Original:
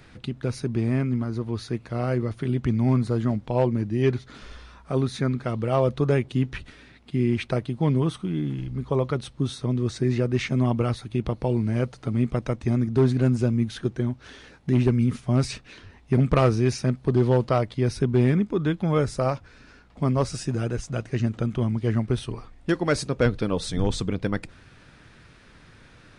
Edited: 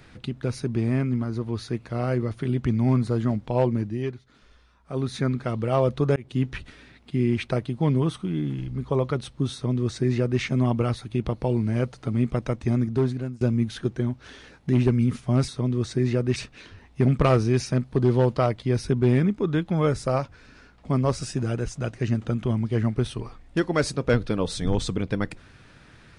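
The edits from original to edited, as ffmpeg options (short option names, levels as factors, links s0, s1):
-filter_complex "[0:a]asplit=7[s0][s1][s2][s3][s4][s5][s6];[s0]atrim=end=4.15,asetpts=PTS-STARTPTS,afade=t=out:st=3.78:d=0.37:silence=0.211349[s7];[s1]atrim=start=4.15:end=4.79,asetpts=PTS-STARTPTS,volume=0.211[s8];[s2]atrim=start=4.79:end=6.16,asetpts=PTS-STARTPTS,afade=t=in:d=0.37:silence=0.211349,afade=t=out:st=1.366:d=0.004:c=hsin[s9];[s3]atrim=start=6.16:end=13.41,asetpts=PTS-STARTPTS,afade=t=in:d=0.32:c=qsin,afade=t=out:st=6.66:d=0.59:silence=0.0630957[s10];[s4]atrim=start=13.41:end=15.482,asetpts=PTS-STARTPTS,afade=t=in:d=0.004:c=hsin:silence=0.0630957[s11];[s5]atrim=start=9.528:end=10.412[s12];[s6]atrim=start=15.478[s13];[s7][s8][s9][s10][s11]concat=n=5:v=0:a=1[s14];[s14][s12]acrossfade=d=0.004:c1=hsin:c2=hsin[s15];[s15][s13]acrossfade=d=0.004:c1=hsin:c2=hsin"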